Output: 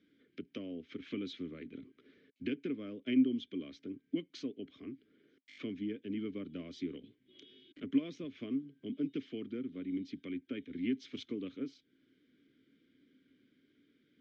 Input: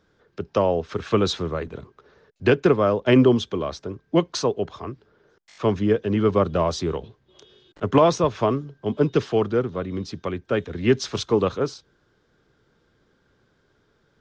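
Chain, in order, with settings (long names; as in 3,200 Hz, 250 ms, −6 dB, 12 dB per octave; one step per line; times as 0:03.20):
downward compressor 2 to 1, threshold −41 dBFS, peak gain reduction 16 dB
formant filter i
level +7.5 dB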